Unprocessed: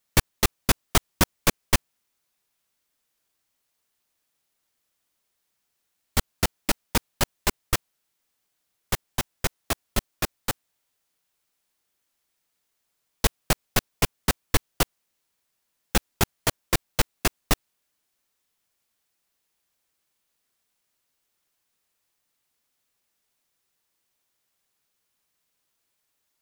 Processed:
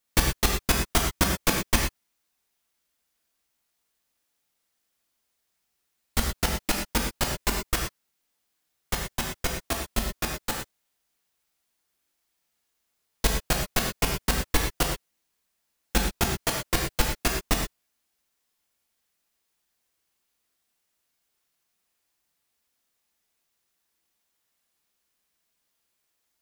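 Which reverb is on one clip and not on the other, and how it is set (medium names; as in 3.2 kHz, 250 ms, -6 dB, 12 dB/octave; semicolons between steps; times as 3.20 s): gated-style reverb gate 140 ms flat, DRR 0.5 dB; trim -3 dB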